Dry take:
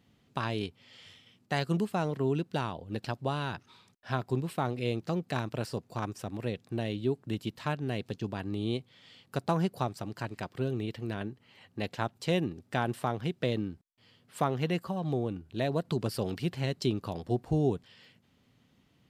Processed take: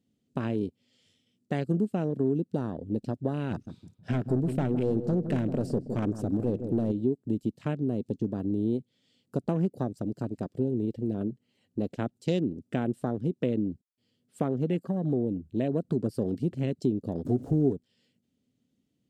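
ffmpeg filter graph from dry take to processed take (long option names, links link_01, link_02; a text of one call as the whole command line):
ffmpeg -i in.wav -filter_complex "[0:a]asettb=1/sr,asplit=3[link_01][link_02][link_03];[link_01]atrim=end=3.514[link_04];[link_02]atrim=start=3.51:end=6.92,asetpts=PTS-STARTPTS,afade=type=in:duration=0.004:curve=qsin,afade=type=out:start_time=3.406:duration=0.004:curve=qsin,acontrast=49,volume=24.5dB,asoftclip=hard,volume=-24.5dB,asplit=2[link_05][link_06];[link_06]adelay=160,lowpass=frequency=1000:poles=1,volume=-9.5dB,asplit=2[link_07][link_08];[link_08]adelay=160,lowpass=frequency=1000:poles=1,volume=0.54,asplit=2[link_09][link_10];[link_10]adelay=160,lowpass=frequency=1000:poles=1,volume=0.54,asplit=2[link_11][link_12];[link_12]adelay=160,lowpass=frequency=1000:poles=1,volume=0.54,asplit=2[link_13][link_14];[link_14]adelay=160,lowpass=frequency=1000:poles=1,volume=0.54,asplit=2[link_15][link_16];[link_16]adelay=160,lowpass=frequency=1000:poles=1,volume=0.54[link_17];[link_05][link_07][link_09][link_11][link_13][link_15][link_17]amix=inputs=7:normalize=0,atrim=end_sample=150381[link_18];[link_03]atrim=start=6.916[link_19];[link_04][link_18]acrossfade=duration=0.004:curve1=hsin:curve2=qsin[link_20];[link_20][link_19]acrossfade=duration=0.004:curve1=qsin:curve2=hsin,asettb=1/sr,asplit=3[link_21][link_22][link_23];[link_21]atrim=end=17.254[link_24];[link_22]atrim=start=17.25:end=17.73,asetpts=PTS-STARTPTS,afade=type=in:duration=0.004:curve=qsin,afade=type=out:start_time=0.476:duration=0.004:curve=qsin,aeval=exprs='val(0)+0.5*0.00944*sgn(val(0))':channel_layout=same,aecho=1:1:7.3:0.43,atrim=end_sample=21168[link_25];[link_23]atrim=start=17.726[link_26];[link_24][link_25]acrossfade=duration=0.004:curve1=hsin:curve2=qsin[link_27];[link_27][link_26]acrossfade=duration=0.004:curve1=qsin:curve2=hsin,afwtdn=0.0112,equalizer=frequency=250:width_type=o:width=1:gain=9,equalizer=frequency=500:width_type=o:width=1:gain=4,equalizer=frequency=1000:width_type=o:width=1:gain=-10,equalizer=frequency=2000:width_type=o:width=1:gain=-4,equalizer=frequency=8000:width_type=o:width=1:gain=8,acompressor=threshold=-29dB:ratio=2,volume=2.5dB" out.wav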